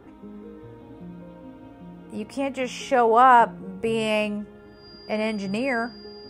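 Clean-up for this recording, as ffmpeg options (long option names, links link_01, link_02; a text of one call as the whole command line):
ffmpeg -i in.wav -af "bandreject=frequency=4800:width=30" out.wav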